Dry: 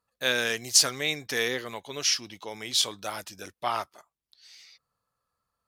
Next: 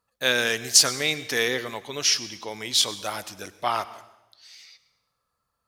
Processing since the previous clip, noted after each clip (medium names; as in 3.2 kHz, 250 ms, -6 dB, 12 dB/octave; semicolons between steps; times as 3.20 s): reverberation RT60 1.0 s, pre-delay 92 ms, DRR 16 dB; trim +3.5 dB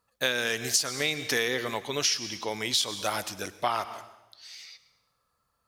compression 10:1, threshold -25 dBFS, peak gain reduction 14.5 dB; trim +2.5 dB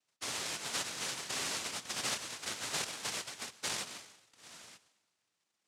peak limiter -17 dBFS, peak gain reduction 7 dB; noise-vocoded speech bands 1; trim -7.5 dB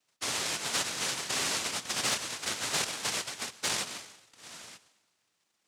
hard clipper -27 dBFS, distortion -29 dB; trim +6 dB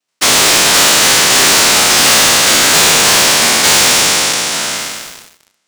spectral sustain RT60 2.58 s; high-pass 140 Hz 12 dB/octave; waveshaping leveller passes 5; trim +8.5 dB